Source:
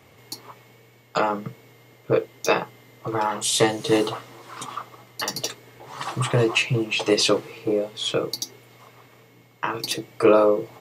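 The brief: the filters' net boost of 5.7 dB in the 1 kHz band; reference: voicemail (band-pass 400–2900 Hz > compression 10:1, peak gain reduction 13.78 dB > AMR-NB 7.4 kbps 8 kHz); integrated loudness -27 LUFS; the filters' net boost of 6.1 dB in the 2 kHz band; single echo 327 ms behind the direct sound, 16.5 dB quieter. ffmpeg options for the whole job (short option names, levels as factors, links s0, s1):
-af "highpass=400,lowpass=2900,equalizer=f=1000:t=o:g=5,equalizer=f=2000:t=o:g=8.5,aecho=1:1:327:0.15,acompressor=threshold=0.0708:ratio=10,volume=1.68" -ar 8000 -c:a libopencore_amrnb -b:a 7400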